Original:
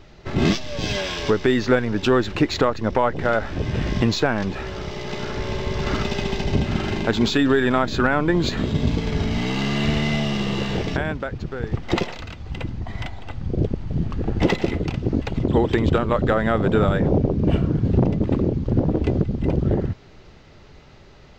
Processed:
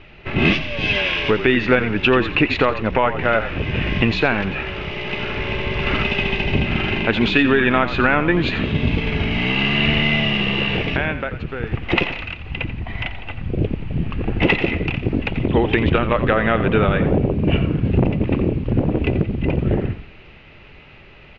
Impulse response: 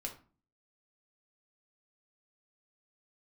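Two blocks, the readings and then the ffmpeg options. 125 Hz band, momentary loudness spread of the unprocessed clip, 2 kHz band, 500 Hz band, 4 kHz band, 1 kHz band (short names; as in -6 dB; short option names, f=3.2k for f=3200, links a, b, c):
+1.5 dB, 11 LU, +8.0 dB, +1.5 dB, +5.5 dB, +3.0 dB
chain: -filter_complex "[0:a]lowpass=f=2.6k:t=q:w=4.6,asplit=5[a][b][c][d][e];[b]adelay=87,afreqshift=-44,volume=-12dB[f];[c]adelay=174,afreqshift=-88,volume=-20.9dB[g];[d]adelay=261,afreqshift=-132,volume=-29.7dB[h];[e]adelay=348,afreqshift=-176,volume=-38.6dB[i];[a][f][g][h][i]amix=inputs=5:normalize=0,volume=1dB"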